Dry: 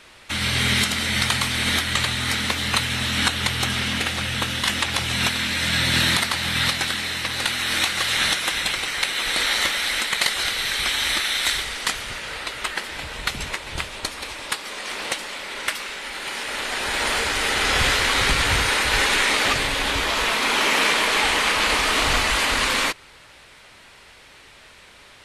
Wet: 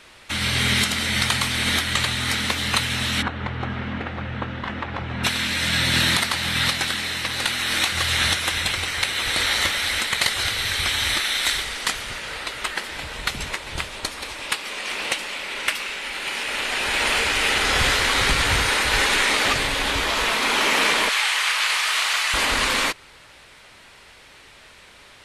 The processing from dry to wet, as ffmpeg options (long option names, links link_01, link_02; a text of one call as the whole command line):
ffmpeg -i in.wav -filter_complex "[0:a]asplit=3[link_01][link_02][link_03];[link_01]afade=type=out:start_time=3.21:duration=0.02[link_04];[link_02]lowpass=1300,afade=type=in:start_time=3.21:duration=0.02,afade=type=out:start_time=5.23:duration=0.02[link_05];[link_03]afade=type=in:start_time=5.23:duration=0.02[link_06];[link_04][link_05][link_06]amix=inputs=3:normalize=0,asettb=1/sr,asplit=3[link_07][link_08][link_09];[link_07]atrim=end=7.924[link_10];[link_08]atrim=start=7.92:end=11.17,asetpts=PTS-STARTPTS,afade=type=in:duration=0.004:curve=qsin,afade=type=out:start_time=3.246:duration=0.004:curve=qsin,equalizer=frequency=89:width=1.8:gain=14.5[link_11];[link_09]atrim=start=11.166[link_12];[link_10][link_11]acrossfade=duration=0.004:curve1=hsin:curve2=qsin[link_13];[link_13][link_12]acrossfade=duration=0.004:curve1=qsin:curve2=hsin,asettb=1/sr,asplit=3[link_14][link_15][link_16];[link_14]atrim=end=14.404[link_17];[link_15]atrim=start=14.4:end=17.58,asetpts=PTS-STARTPTS,afade=type=in:duration=0.004:curve=qsin,afade=type=out:start_time=3.176:duration=0.004:curve=qsin,equalizer=frequency=2600:width=2.7:gain=5.5[link_18];[link_16]atrim=start=17.576[link_19];[link_17][link_18]acrossfade=duration=0.004:curve1=hsin:curve2=qsin[link_20];[link_20][link_19]acrossfade=duration=0.004:curve1=qsin:curve2=hsin,asettb=1/sr,asplit=3[link_21][link_22][link_23];[link_21]atrim=end=21.094[link_24];[link_22]atrim=start=21.09:end=22.34,asetpts=PTS-STARTPTS,afade=type=in:duration=0.004:curve=qsin,afade=type=out:start_time=1.246:duration=0.004:curve=qsin,highpass=1200[link_25];[link_23]atrim=start=22.336[link_26];[link_24][link_25]acrossfade=duration=0.004:curve1=hsin:curve2=qsin[link_27];[link_27][link_26]acrossfade=duration=0.004:curve1=qsin:curve2=hsin" out.wav